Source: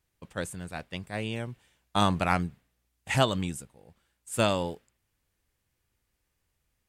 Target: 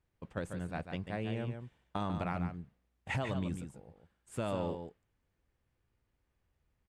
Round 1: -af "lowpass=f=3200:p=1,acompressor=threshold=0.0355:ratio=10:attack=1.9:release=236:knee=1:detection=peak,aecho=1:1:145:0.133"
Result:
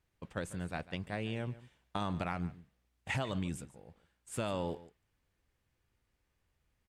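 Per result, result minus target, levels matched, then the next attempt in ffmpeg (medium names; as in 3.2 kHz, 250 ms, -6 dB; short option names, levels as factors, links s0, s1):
echo-to-direct -10 dB; 4 kHz band +4.0 dB
-af "lowpass=f=3200:p=1,acompressor=threshold=0.0355:ratio=10:attack=1.9:release=236:knee=1:detection=peak,aecho=1:1:145:0.422"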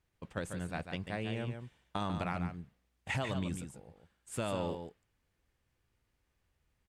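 4 kHz band +4.0 dB
-af "lowpass=f=1300:p=1,acompressor=threshold=0.0355:ratio=10:attack=1.9:release=236:knee=1:detection=peak,aecho=1:1:145:0.422"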